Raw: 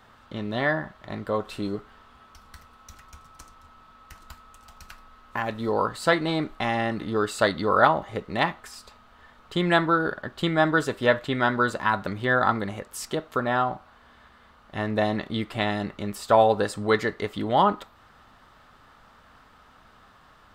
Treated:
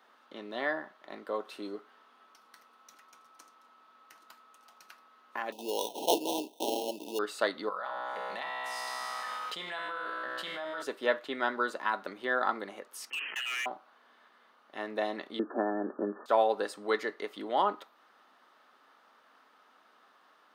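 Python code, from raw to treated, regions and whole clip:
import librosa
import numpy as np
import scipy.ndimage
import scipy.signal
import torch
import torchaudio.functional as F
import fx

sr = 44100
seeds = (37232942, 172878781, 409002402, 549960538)

y = fx.chain(x, sr, fx.weighting(curve='D'),
    fx.sample_hold(seeds[0], rate_hz=2400.0, jitter_pct=0),
    fx.brickwall_bandstop(low_hz=1000.0, high_hz=2400.0), at=(5.52, 7.19))
y = fx.chain(y, sr, fx.peak_eq(hz=330.0, db=-15.0, octaves=1.0),
    fx.comb_fb(f0_hz=63.0, decay_s=1.4, harmonics='all', damping=0.0, mix_pct=90),
    fx.env_flatten(amount_pct=100), at=(7.69, 10.82))
y = fx.chain(y, sr, fx.freq_invert(carrier_hz=3100),
    fx.clip_hard(threshold_db=-24.5),
    fx.sustainer(db_per_s=47.0), at=(13.1, 13.66))
y = fx.chain(y, sr, fx.brickwall_bandpass(low_hz=180.0, high_hz=1800.0),
    fx.peak_eq(hz=290.0, db=9.5, octaves=2.2),
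    fx.band_squash(depth_pct=100), at=(15.39, 16.26))
y = scipy.signal.sosfilt(scipy.signal.butter(4, 280.0, 'highpass', fs=sr, output='sos'), y)
y = fx.notch(y, sr, hz=7600.0, q=7.4)
y = y * librosa.db_to_amplitude(-7.5)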